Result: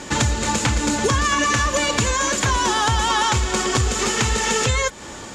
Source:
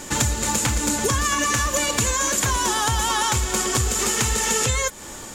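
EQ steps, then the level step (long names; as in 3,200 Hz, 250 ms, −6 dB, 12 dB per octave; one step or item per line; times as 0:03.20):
high-pass filter 41 Hz
low-pass filter 5,500 Hz 12 dB per octave
+3.5 dB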